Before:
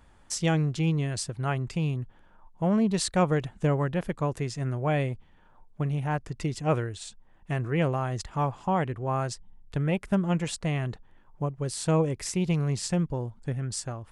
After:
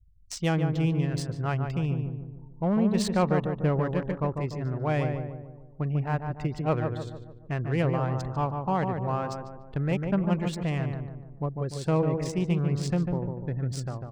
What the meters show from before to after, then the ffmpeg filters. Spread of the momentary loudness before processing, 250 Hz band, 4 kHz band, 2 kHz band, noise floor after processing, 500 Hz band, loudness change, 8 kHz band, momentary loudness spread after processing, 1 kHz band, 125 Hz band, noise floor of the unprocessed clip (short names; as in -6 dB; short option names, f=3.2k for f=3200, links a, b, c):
9 LU, +0.5 dB, -4.0 dB, -1.5 dB, -47 dBFS, +0.5 dB, 0.0 dB, -8.0 dB, 10 LU, 0.0 dB, +0.5 dB, -57 dBFS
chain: -filter_complex "[0:a]afftfilt=real='re*gte(hypot(re,im),0.00562)':imag='im*gte(hypot(re,im),0.00562)':win_size=1024:overlap=0.75,adynamicsmooth=sensitivity=5.5:basefreq=2.7k,asplit=2[a][b];[b]adelay=147,lowpass=f=1.3k:p=1,volume=-4.5dB,asplit=2[c][d];[d]adelay=147,lowpass=f=1.3k:p=1,volume=0.51,asplit=2[e][f];[f]adelay=147,lowpass=f=1.3k:p=1,volume=0.51,asplit=2[g][h];[h]adelay=147,lowpass=f=1.3k:p=1,volume=0.51,asplit=2[i][j];[j]adelay=147,lowpass=f=1.3k:p=1,volume=0.51,asplit=2[k][l];[l]adelay=147,lowpass=f=1.3k:p=1,volume=0.51,asplit=2[m][n];[n]adelay=147,lowpass=f=1.3k:p=1,volume=0.51[o];[a][c][e][g][i][k][m][o]amix=inputs=8:normalize=0,volume=-1dB"